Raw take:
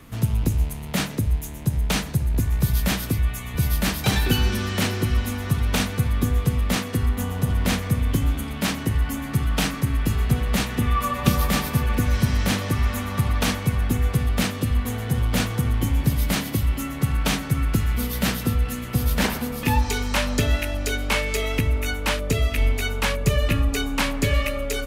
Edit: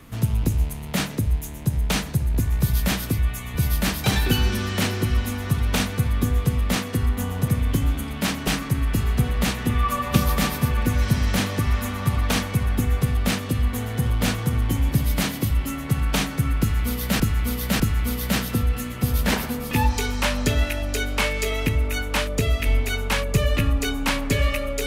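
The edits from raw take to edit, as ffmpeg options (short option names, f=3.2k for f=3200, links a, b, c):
-filter_complex "[0:a]asplit=5[a][b][c][d][e];[a]atrim=end=7.482[f];[b]atrim=start=7.878:end=8.872[g];[c]atrim=start=9.588:end=18.322[h];[d]atrim=start=17.718:end=18.322[i];[e]atrim=start=17.718[j];[f][g]acrossfade=d=0.004:c1=hsin:c2=hsin[k];[k][h]acrossfade=d=0.004:c1=hsin:c2=hsin[l];[l][i]acrossfade=d=0.004:c1=hsin:c2=hsin[m];[m][j]acrossfade=d=0.004:c1=hsin:c2=hsin"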